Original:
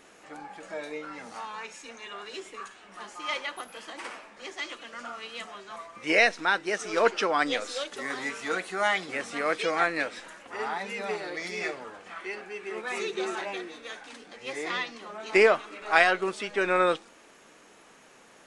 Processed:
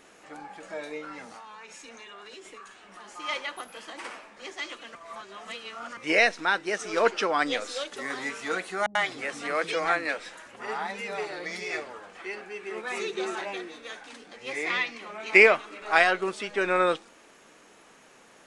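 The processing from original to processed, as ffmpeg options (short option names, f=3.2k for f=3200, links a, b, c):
-filter_complex "[0:a]asettb=1/sr,asplit=3[a][b][c];[a]atrim=end=1.244[d];[b]atrim=start=1.24:end=3.14,asetpts=PTS-STARTPTS,afade=t=in:d=0.004:c=qsin,afade=t=out:st=1.896:d=0.004:c=qsin,acompressor=threshold=-41dB:ratio=10:attack=3.2:release=140:knee=1:detection=peak[e];[c]atrim=start=3.136[f];[d][e]acrossfade=d=0.004:c1=hsin:c2=qsin[g];[g][f]acrossfade=d=0.004:c1=qsin:c2=hsin,asettb=1/sr,asplit=3[h][i][j];[h]atrim=end=8.864[k];[i]atrim=start=8.86:end=12.22,asetpts=PTS-STARTPTS,afade=t=in:d=0.004:c=qsin,afade=t=out:st=3.356:d=0.004:c=qsin,acrossover=split=270[l][m];[m]adelay=90[n];[l][n]amix=inputs=2:normalize=0,atrim=end_sample=148176[o];[j]atrim=start=12.216[p];[k][o]acrossfade=d=0.004:c1=hsin:c2=qsin[q];[q][p]acrossfade=d=0.004:c1=qsin:c2=hsin,asettb=1/sr,asplit=3[r][s][t];[r]atrim=end=14.514[u];[s]atrim=start=14.51:end=15.57,asetpts=PTS-STARTPTS,afade=t=in:d=0.004:c=qsin,afade=t=out:st=1.056:d=0.004:c=qsin,equalizer=f=2.3k:w=3.3:g=10.5[v];[t]atrim=start=15.566[w];[u][v]acrossfade=d=0.004:c1=hsin:c2=qsin[x];[x][w]acrossfade=d=0.004:c1=qsin:c2=hsin,asplit=3[y][z][aa];[y]atrim=end=4.952[ab];[z]atrim=start=4.948:end=5.972,asetpts=PTS-STARTPTS,areverse[ac];[aa]atrim=start=5.968[ad];[ab][ac]acrossfade=d=0.004:c1=hsin:c2=hsin[ae];[ae][ad]acrossfade=d=0.004:c1=hsin:c2=hsin"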